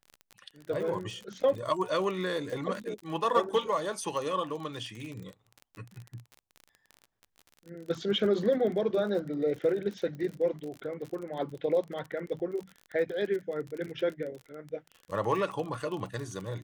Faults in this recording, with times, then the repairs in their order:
crackle 37 per s -36 dBFS
12.39–12.40 s: dropout 7.1 ms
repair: de-click; interpolate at 12.39 s, 7.1 ms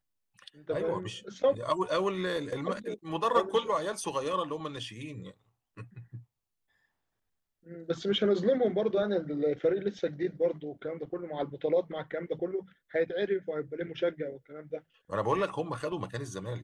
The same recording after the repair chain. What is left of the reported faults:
nothing left

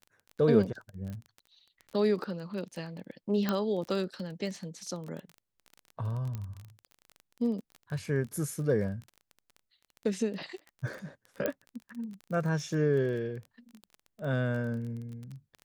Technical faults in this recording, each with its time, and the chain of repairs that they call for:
crackle 23 per s -37 dBFS
1.10 s: pop -30 dBFS
3.49 s: pop -15 dBFS
6.35 s: pop -24 dBFS
11.46 s: pop -16 dBFS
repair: de-click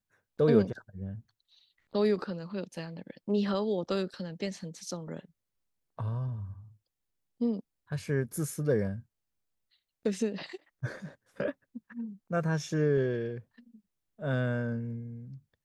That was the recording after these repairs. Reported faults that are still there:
nothing left

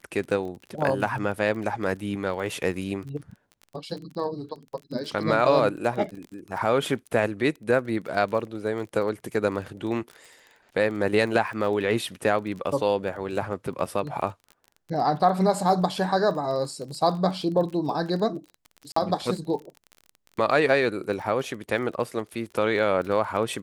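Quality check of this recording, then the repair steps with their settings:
crackle 27 per s -34 dBFS
18.92–18.96 s: dropout 44 ms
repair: de-click; interpolate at 18.92 s, 44 ms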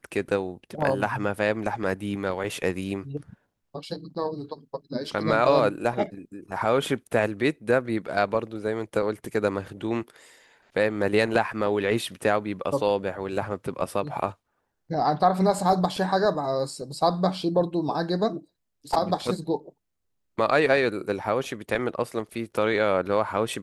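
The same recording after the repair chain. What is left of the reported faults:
nothing left

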